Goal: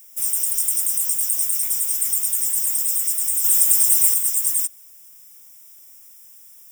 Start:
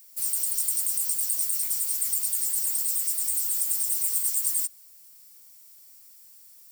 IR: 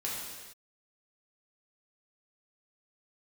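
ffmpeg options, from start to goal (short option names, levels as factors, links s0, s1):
-filter_complex "[0:a]asettb=1/sr,asplit=3[s0][s1][s2];[s0]atrim=end=3.444[s3];[s1]atrim=start=3.44:end=4.14,asetpts=PTS-STARTPTS,afade=t=in:d=0.004:c=qsin,afade=t=out:st=0.696:d=0.004:c=qsin,acontrast=33[s4];[s2]atrim=start=4.136[s5];[s3][s4]acrossfade=d=0.004:c1=hsin:c2=qsin[s6];[s6][s5]acrossfade=d=0.004:c1=qsin:c2=hsin,asuperstop=centerf=4300:order=12:qfactor=3.6,volume=1.88"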